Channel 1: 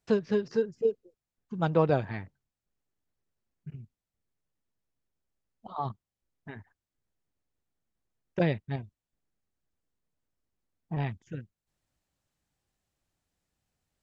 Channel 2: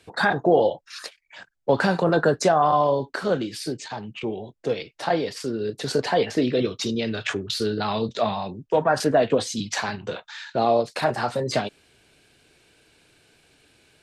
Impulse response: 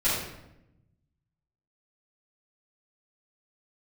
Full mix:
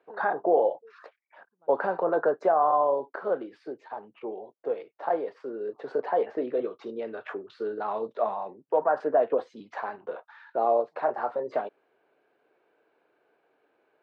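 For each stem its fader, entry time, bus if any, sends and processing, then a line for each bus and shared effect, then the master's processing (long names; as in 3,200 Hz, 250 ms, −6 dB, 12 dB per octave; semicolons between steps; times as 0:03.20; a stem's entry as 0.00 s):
−14.0 dB, 0.00 s, no send, brickwall limiter −18.5 dBFS, peak gain reduction 7.5 dB; automatic ducking −15 dB, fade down 1.25 s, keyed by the second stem
−3.0 dB, 0.00 s, no send, no processing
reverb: not used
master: flat-topped band-pass 710 Hz, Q 0.78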